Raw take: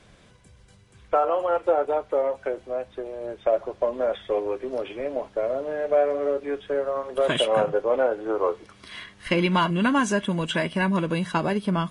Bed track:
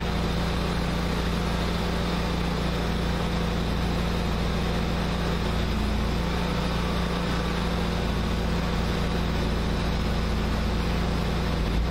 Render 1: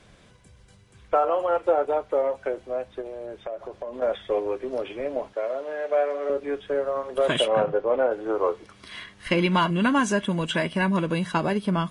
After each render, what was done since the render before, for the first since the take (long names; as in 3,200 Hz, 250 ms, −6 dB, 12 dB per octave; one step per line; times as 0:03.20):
0:03.01–0:04.02: downward compressor 4 to 1, threshold −31 dBFS
0:05.33–0:06.30: meter weighting curve A
0:07.48–0:08.11: high-frequency loss of the air 160 metres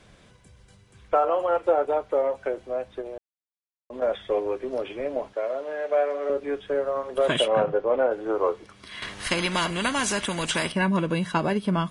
0:03.18–0:03.90: silence
0:09.02–0:10.72: every bin compressed towards the loudest bin 2 to 1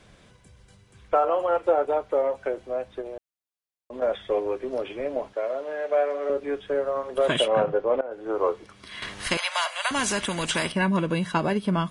0:08.01–0:08.41: fade in, from −19 dB
0:09.37–0:09.91: Butterworth high-pass 570 Hz 72 dB per octave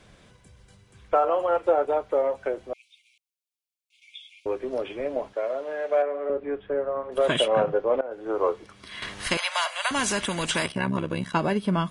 0:02.73–0:04.46: linear-phase brick-wall high-pass 2,100 Hz
0:06.02–0:07.12: high-frequency loss of the air 470 metres
0:10.66–0:11.34: amplitude modulation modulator 68 Hz, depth 75%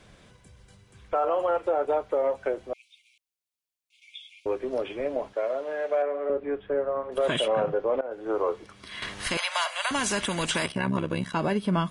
brickwall limiter −16.5 dBFS, peak gain reduction 5.5 dB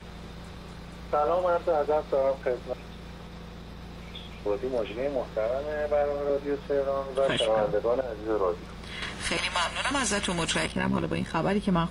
mix in bed track −16.5 dB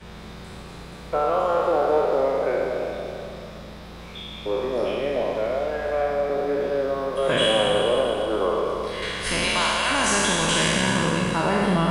peak hold with a decay on every bin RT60 2.38 s
four-comb reverb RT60 2.6 s, combs from 33 ms, DRR 5.5 dB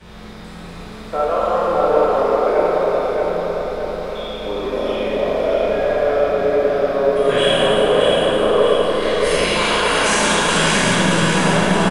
repeating echo 624 ms, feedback 53%, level −4 dB
comb and all-pass reverb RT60 2 s, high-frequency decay 0.45×, pre-delay 5 ms, DRR −2.5 dB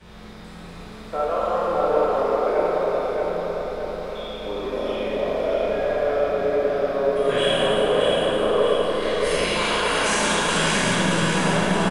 level −5 dB